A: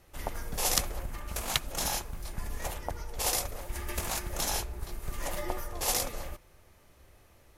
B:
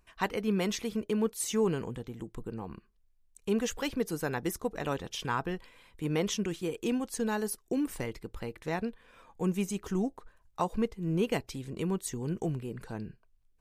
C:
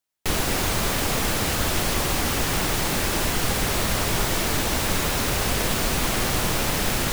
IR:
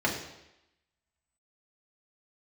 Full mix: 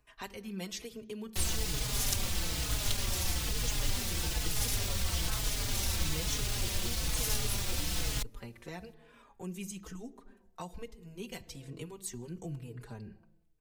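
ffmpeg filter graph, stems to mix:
-filter_complex "[0:a]adelay=1350,volume=-3dB[link_01];[1:a]volume=0dB,asplit=2[link_02][link_03];[link_03]volume=-23.5dB[link_04];[2:a]highshelf=frequency=7900:gain=-8,aeval=exprs='clip(val(0),-1,0.0794)':channel_layout=same,adelay=1100,volume=-1.5dB[link_05];[3:a]atrim=start_sample=2205[link_06];[link_04][link_06]afir=irnorm=-1:irlink=0[link_07];[link_01][link_02][link_05][link_07]amix=inputs=4:normalize=0,acrossover=split=120|3000[link_08][link_09][link_10];[link_09]acompressor=threshold=-41dB:ratio=4[link_11];[link_08][link_11][link_10]amix=inputs=3:normalize=0,asplit=2[link_12][link_13];[link_13]adelay=4.3,afreqshift=-1.1[link_14];[link_12][link_14]amix=inputs=2:normalize=1"

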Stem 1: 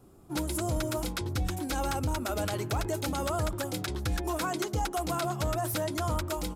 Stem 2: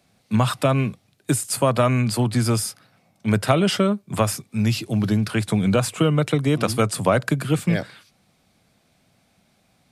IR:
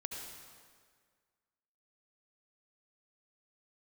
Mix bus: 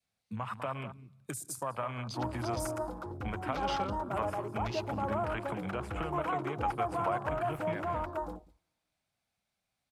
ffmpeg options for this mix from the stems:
-filter_complex "[0:a]equalizer=frequency=580:width_type=o:width=2.3:gain=6.5,adelay=1850,volume=-11.5dB,asplit=3[link_01][link_02][link_03];[link_02]volume=-20dB[link_04];[link_03]volume=-17.5dB[link_05];[1:a]equalizer=frequency=230:width_type=o:width=2.7:gain=-9.5,acompressor=threshold=-34dB:ratio=5,volume=-5dB,asplit=3[link_06][link_07][link_08];[link_07]volume=-10.5dB[link_09];[link_08]volume=-9.5dB[link_10];[2:a]atrim=start_sample=2205[link_11];[link_04][link_09]amix=inputs=2:normalize=0[link_12];[link_12][link_11]afir=irnorm=-1:irlink=0[link_13];[link_05][link_10]amix=inputs=2:normalize=0,aecho=0:1:201:1[link_14];[link_01][link_06][link_13][link_14]amix=inputs=4:normalize=0,afwtdn=0.00501,adynamicequalizer=threshold=0.00224:dfrequency=950:dqfactor=1.5:tfrequency=950:tqfactor=1.5:attack=5:release=100:ratio=0.375:range=4:mode=boostabove:tftype=bell"

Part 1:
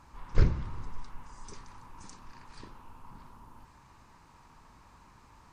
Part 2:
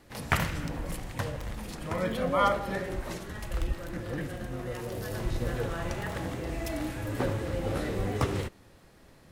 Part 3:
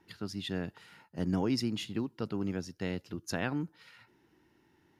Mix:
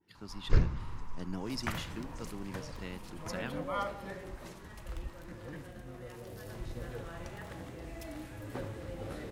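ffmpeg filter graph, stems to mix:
ffmpeg -i stem1.wav -i stem2.wav -i stem3.wav -filter_complex "[0:a]adelay=150,volume=-2dB[link_01];[1:a]adelay=1350,volume=-10.5dB[link_02];[2:a]adynamicequalizer=threshold=0.00316:dfrequency=1500:dqfactor=0.7:tfrequency=1500:tqfactor=0.7:attack=5:release=100:ratio=0.375:range=2.5:mode=boostabove:tftype=highshelf,volume=-9dB[link_03];[link_01][link_02][link_03]amix=inputs=3:normalize=0" out.wav

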